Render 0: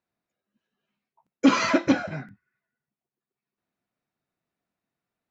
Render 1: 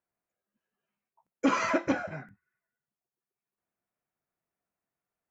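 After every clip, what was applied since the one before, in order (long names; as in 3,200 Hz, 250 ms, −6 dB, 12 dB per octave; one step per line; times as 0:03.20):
graphic EQ with 10 bands 125 Hz −4 dB, 250 Hz −6 dB, 4,000 Hz −11 dB
level −2.5 dB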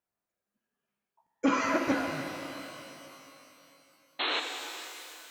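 sound drawn into the spectrogram noise, 0:04.19–0:04.40, 250–4,300 Hz −29 dBFS
reverb with rising layers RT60 3 s, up +12 semitones, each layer −8 dB, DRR 3.5 dB
level −1.5 dB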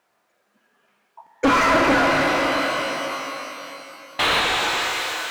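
mid-hump overdrive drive 29 dB, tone 1,900 Hz, clips at −14 dBFS
level +5 dB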